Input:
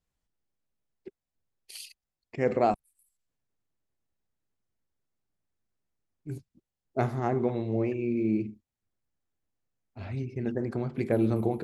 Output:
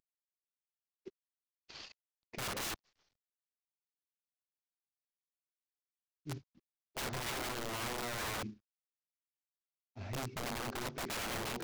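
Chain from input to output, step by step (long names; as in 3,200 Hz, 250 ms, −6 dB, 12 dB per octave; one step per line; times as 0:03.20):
variable-slope delta modulation 32 kbit/s
wrap-around overflow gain 29 dB
level −5 dB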